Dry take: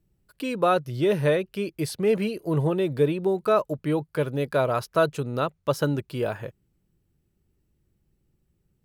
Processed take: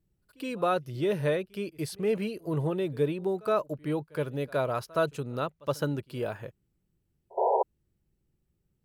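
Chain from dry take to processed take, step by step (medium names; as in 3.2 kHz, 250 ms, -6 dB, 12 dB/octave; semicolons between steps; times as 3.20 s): painted sound noise, 7.37–7.63 s, 380–990 Hz -19 dBFS; pre-echo 69 ms -24 dB; trim -5.5 dB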